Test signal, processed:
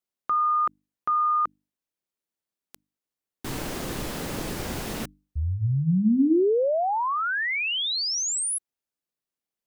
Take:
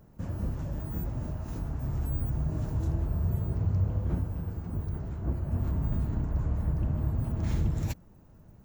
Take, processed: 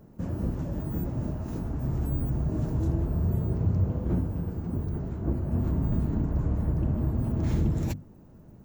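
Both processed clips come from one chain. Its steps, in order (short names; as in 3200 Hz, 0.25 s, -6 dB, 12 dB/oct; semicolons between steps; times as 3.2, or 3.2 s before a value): bell 270 Hz +8.5 dB 2.2 oct; notches 50/100/150/200/250/300 Hz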